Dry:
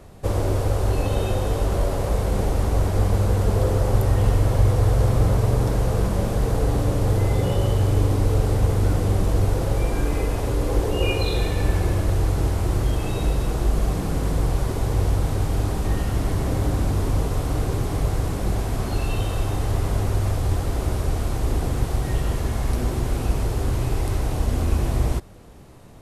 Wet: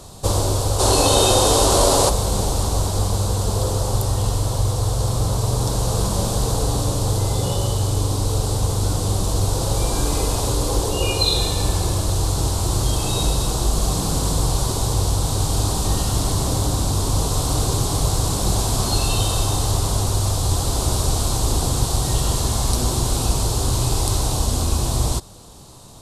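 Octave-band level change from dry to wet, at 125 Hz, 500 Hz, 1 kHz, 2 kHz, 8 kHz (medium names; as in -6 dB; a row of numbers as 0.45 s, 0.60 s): +0.5 dB, +2.5 dB, +6.0 dB, 0.0 dB, +16.0 dB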